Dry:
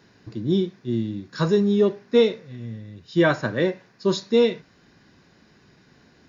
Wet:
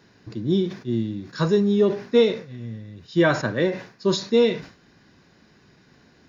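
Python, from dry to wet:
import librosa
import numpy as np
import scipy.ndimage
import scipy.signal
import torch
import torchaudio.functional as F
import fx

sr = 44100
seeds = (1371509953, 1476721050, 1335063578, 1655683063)

y = fx.sustainer(x, sr, db_per_s=130.0)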